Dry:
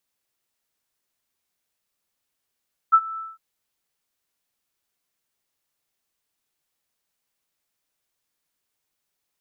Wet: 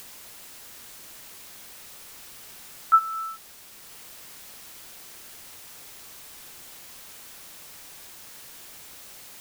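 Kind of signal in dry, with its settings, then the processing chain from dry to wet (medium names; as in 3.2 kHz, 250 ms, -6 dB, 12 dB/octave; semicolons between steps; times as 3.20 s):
ADSR sine 1.32 kHz, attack 21 ms, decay 57 ms, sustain -20.5 dB, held 0.26 s, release 196 ms -8.5 dBFS
upward compressor, threshold -23 dBFS; word length cut 8-bit, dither triangular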